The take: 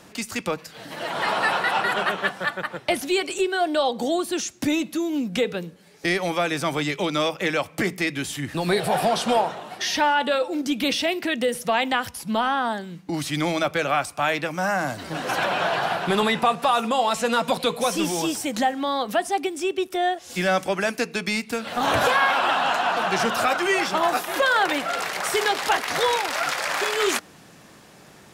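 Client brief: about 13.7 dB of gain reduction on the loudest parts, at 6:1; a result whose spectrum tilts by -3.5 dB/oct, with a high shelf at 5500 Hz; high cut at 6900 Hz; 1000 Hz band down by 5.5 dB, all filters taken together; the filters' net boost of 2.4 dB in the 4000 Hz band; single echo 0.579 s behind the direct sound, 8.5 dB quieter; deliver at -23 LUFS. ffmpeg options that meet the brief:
-af "lowpass=6.9k,equalizer=f=1k:t=o:g=-8,equalizer=f=4k:t=o:g=5,highshelf=f=5.5k:g=-3,acompressor=threshold=-34dB:ratio=6,aecho=1:1:579:0.376,volume=12.5dB"

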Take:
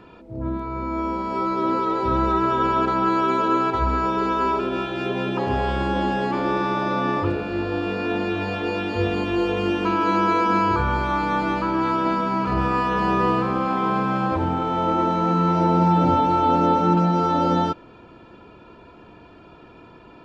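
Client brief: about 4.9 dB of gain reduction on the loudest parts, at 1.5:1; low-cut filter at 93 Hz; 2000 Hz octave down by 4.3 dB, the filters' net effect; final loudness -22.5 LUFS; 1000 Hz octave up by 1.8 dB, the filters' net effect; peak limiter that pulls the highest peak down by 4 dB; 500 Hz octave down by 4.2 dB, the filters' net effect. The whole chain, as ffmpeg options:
-af "highpass=93,equalizer=f=500:t=o:g=-7,equalizer=f=1k:t=o:g=6,equalizer=f=2k:t=o:g=-8,acompressor=threshold=-28dB:ratio=1.5,volume=3.5dB,alimiter=limit=-13.5dB:level=0:latency=1"

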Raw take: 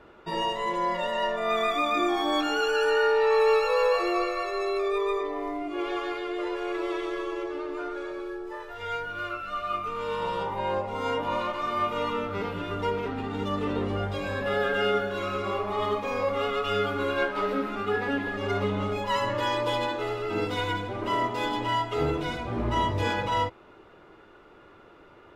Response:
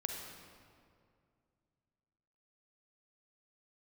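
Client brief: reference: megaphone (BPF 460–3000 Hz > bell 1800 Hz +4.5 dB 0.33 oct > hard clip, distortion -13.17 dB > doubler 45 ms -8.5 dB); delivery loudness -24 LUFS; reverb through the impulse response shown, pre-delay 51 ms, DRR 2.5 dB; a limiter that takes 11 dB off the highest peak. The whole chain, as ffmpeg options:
-filter_complex "[0:a]alimiter=limit=-23dB:level=0:latency=1,asplit=2[a][b];[1:a]atrim=start_sample=2205,adelay=51[c];[b][c]afir=irnorm=-1:irlink=0,volume=-3.5dB[d];[a][d]amix=inputs=2:normalize=0,highpass=460,lowpass=3k,equalizer=f=1.8k:t=o:w=0.33:g=4.5,asoftclip=type=hard:threshold=-28dB,asplit=2[e][f];[f]adelay=45,volume=-8.5dB[g];[e][g]amix=inputs=2:normalize=0,volume=7.5dB"

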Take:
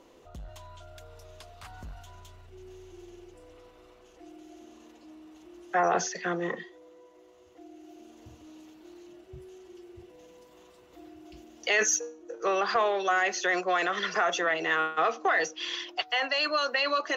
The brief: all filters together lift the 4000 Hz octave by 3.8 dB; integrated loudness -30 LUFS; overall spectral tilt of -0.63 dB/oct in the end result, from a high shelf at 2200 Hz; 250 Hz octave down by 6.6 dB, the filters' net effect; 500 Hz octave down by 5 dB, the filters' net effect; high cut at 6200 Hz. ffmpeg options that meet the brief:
-af "lowpass=6.2k,equalizer=f=250:t=o:g=-8.5,equalizer=f=500:t=o:g=-4.5,highshelf=f=2.2k:g=-3,equalizer=f=4k:t=o:g=8.5,volume=-2dB"

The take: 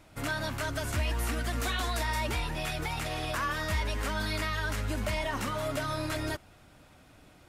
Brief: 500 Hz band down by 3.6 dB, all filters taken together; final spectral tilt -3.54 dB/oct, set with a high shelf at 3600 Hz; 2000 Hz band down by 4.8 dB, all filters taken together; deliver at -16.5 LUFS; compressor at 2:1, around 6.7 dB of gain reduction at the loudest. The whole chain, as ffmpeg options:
-af "equalizer=f=500:t=o:g=-4.5,equalizer=f=2k:t=o:g=-8.5,highshelf=f=3.6k:g=8.5,acompressor=threshold=-39dB:ratio=2,volume=21.5dB"

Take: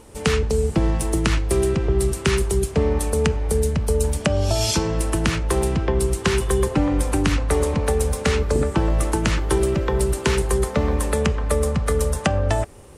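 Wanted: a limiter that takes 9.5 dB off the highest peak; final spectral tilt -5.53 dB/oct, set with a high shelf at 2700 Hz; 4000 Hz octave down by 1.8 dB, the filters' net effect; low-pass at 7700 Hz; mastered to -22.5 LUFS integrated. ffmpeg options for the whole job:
-af "lowpass=7.7k,highshelf=f=2.7k:g=4.5,equalizer=f=4k:t=o:g=-6.5,volume=1dB,alimiter=limit=-12.5dB:level=0:latency=1"

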